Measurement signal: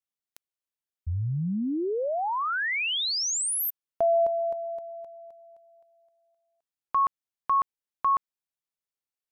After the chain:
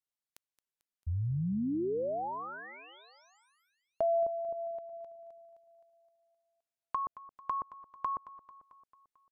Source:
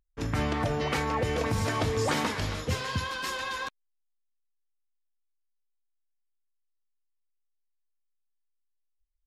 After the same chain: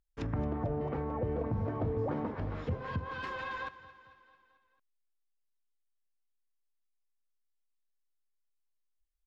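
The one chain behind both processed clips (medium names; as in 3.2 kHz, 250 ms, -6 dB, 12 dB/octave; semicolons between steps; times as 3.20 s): low-pass that closes with the level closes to 720 Hz, closed at -26 dBFS; feedback delay 222 ms, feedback 58%, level -16.5 dB; trim -4 dB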